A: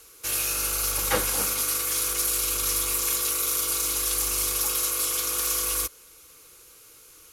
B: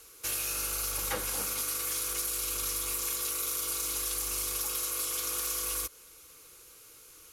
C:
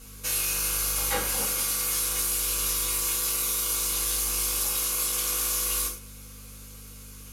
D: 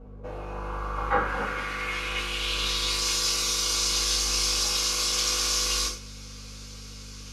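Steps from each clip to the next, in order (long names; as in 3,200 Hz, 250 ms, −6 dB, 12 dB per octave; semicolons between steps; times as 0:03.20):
downward compressor, threshold −27 dBFS, peak gain reduction 8.5 dB; level −2.5 dB
mains hum 50 Hz, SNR 18 dB; reverb whose tail is shaped and stops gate 150 ms falling, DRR −4.5 dB
low-pass filter sweep 660 Hz → 5,200 Hz, 0:00.22–0:03.13; level +3 dB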